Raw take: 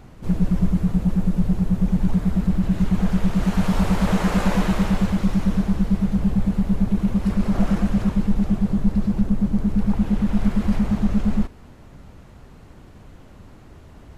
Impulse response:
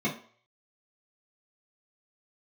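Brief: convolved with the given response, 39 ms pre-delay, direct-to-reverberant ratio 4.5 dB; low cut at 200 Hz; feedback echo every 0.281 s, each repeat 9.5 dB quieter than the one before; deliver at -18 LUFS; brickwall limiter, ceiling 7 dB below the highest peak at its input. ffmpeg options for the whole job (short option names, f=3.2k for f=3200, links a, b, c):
-filter_complex "[0:a]highpass=200,alimiter=limit=-18.5dB:level=0:latency=1,aecho=1:1:281|562|843|1124:0.335|0.111|0.0365|0.012,asplit=2[a][b];[1:a]atrim=start_sample=2205,adelay=39[c];[b][c]afir=irnorm=-1:irlink=0,volume=-14dB[d];[a][d]amix=inputs=2:normalize=0,volume=3dB"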